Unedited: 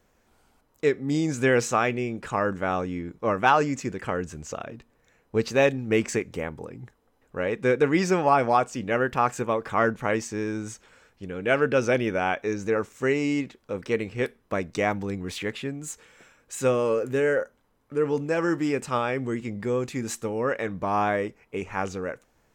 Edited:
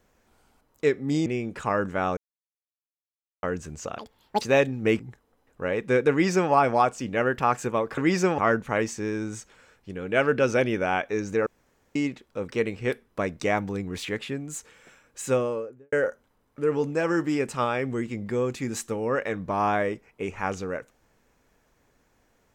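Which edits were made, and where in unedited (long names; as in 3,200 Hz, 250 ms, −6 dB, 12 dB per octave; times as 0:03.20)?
0:01.26–0:01.93: remove
0:02.84–0:04.10: silence
0:04.65–0:05.47: play speed 189%
0:06.05–0:06.74: remove
0:07.85–0:08.26: duplicate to 0:09.72
0:12.80–0:13.29: fill with room tone
0:16.54–0:17.26: fade out and dull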